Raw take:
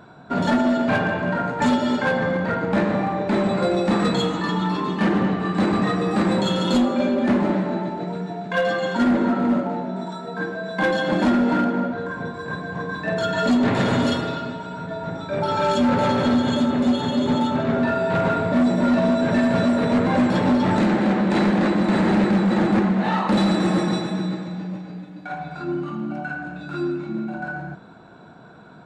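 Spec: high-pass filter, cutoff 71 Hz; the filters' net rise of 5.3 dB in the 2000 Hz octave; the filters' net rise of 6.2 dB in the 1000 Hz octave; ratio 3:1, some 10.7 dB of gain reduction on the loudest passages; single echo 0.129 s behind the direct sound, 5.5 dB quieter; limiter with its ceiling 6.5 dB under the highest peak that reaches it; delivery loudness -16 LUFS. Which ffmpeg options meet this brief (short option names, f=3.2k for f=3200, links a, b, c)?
-af "highpass=71,equalizer=f=1k:t=o:g=7,equalizer=f=2k:t=o:g=4,acompressor=threshold=-28dB:ratio=3,alimiter=limit=-21dB:level=0:latency=1,aecho=1:1:129:0.531,volume=12.5dB"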